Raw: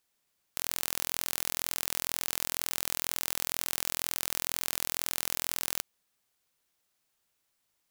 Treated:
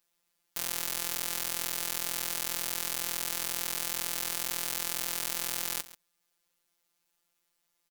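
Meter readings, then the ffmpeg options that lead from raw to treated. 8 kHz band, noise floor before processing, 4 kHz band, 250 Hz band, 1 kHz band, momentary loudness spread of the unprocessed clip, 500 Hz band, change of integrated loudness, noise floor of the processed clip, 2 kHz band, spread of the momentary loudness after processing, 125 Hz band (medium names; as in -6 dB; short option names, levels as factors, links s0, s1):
0.0 dB, -78 dBFS, 0.0 dB, 0.0 dB, 0.0 dB, 2 LU, 0.0 dB, 0.0 dB, -79 dBFS, 0.0 dB, 2 LU, -1.0 dB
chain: -af "afftfilt=real='hypot(re,im)*cos(PI*b)':imag='0':win_size=1024:overlap=0.75,aecho=1:1:137:0.141,volume=1.41"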